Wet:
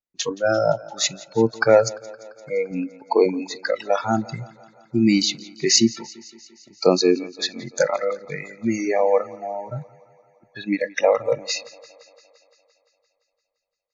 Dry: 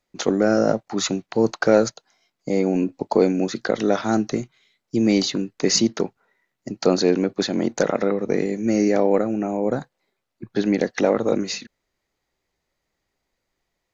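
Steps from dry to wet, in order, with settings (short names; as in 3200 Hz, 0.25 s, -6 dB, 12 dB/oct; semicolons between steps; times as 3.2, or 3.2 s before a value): spectral noise reduction 25 dB; 2.71–3.26 low shelf 170 Hz -11 dB; thinning echo 0.172 s, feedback 69%, high-pass 170 Hz, level -21 dB; gain +3.5 dB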